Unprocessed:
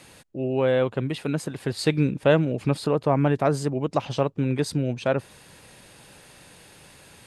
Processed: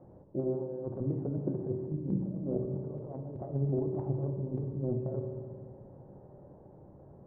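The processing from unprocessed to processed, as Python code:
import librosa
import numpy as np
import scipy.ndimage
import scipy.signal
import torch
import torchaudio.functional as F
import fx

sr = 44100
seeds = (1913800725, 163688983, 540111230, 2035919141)

y = scipy.signal.sosfilt(scipy.signal.cheby2(4, 70, 3300.0, 'lowpass', fs=sr, output='sos'), x)
y = fx.over_compress(y, sr, threshold_db=-28.0, ratio=-0.5)
y = fx.rev_fdn(y, sr, rt60_s=1.7, lf_ratio=1.5, hf_ratio=1.0, size_ms=16.0, drr_db=2.5)
y = fx.end_taper(y, sr, db_per_s=170.0)
y = y * 10.0 ** (-7.0 / 20.0)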